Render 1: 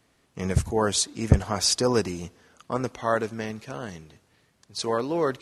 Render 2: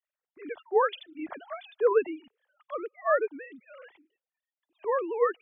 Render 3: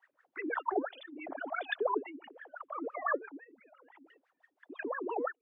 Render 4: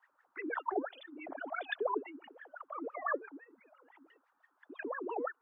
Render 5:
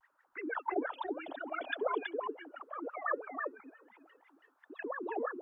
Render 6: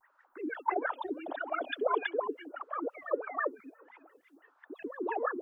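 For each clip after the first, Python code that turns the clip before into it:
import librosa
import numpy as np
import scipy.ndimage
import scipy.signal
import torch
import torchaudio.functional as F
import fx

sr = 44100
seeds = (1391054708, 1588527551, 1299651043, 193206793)

y1 = fx.sine_speech(x, sr)
y1 = fx.dereverb_blind(y1, sr, rt60_s=1.2)
y1 = fx.band_widen(y1, sr, depth_pct=40)
y1 = y1 * librosa.db_to_amplitude(-4.5)
y2 = fx.dynamic_eq(y1, sr, hz=840.0, q=5.4, threshold_db=-48.0, ratio=4.0, max_db=7)
y2 = fx.wah_lfo(y2, sr, hz=5.9, low_hz=260.0, high_hz=1800.0, q=14.0)
y2 = fx.pre_swell(y2, sr, db_per_s=26.0)
y3 = fx.dmg_noise_band(y2, sr, seeds[0], low_hz=810.0, high_hz=1500.0, level_db=-76.0)
y3 = y3 * librosa.db_to_amplitude(-2.5)
y4 = fx.vibrato(y3, sr, rate_hz=1.1, depth_cents=68.0)
y4 = y4 + 10.0 ** (-4.0 / 20.0) * np.pad(y4, (int(326 * sr / 1000.0), 0))[:len(y4)]
y5 = fx.stagger_phaser(y4, sr, hz=1.6)
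y5 = y5 * librosa.db_to_amplitude(6.5)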